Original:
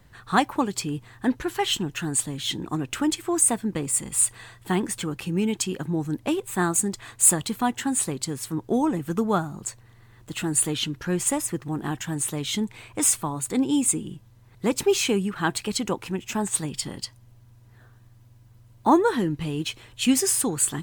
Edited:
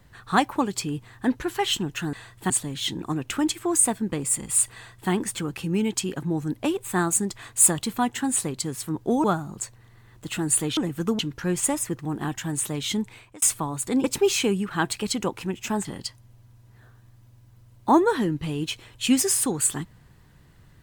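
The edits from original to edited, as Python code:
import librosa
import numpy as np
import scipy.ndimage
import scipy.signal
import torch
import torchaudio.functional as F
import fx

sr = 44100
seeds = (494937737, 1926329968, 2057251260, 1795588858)

y = fx.edit(x, sr, fx.duplicate(start_s=4.37, length_s=0.37, to_s=2.13),
    fx.move(start_s=8.87, length_s=0.42, to_s=10.82),
    fx.fade_out_span(start_s=12.69, length_s=0.36),
    fx.cut(start_s=13.67, length_s=1.02),
    fx.cut(start_s=16.5, length_s=0.33), tone=tone)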